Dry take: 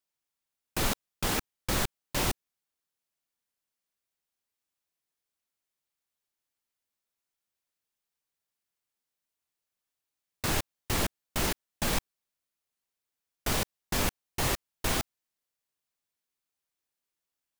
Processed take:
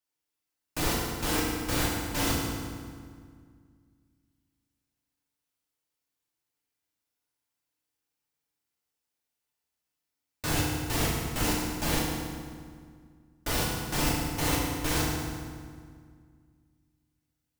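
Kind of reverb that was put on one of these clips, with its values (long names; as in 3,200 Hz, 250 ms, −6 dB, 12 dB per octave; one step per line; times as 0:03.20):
feedback delay network reverb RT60 1.9 s, low-frequency decay 1.4×, high-frequency decay 0.75×, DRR −5 dB
level −4 dB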